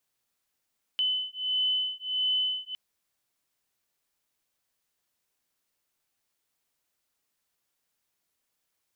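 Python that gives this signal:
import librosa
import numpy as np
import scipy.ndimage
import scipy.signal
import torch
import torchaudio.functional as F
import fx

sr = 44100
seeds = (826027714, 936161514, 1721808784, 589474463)

y = fx.two_tone_beats(sr, length_s=1.76, hz=3020.0, beat_hz=1.5, level_db=-29.0)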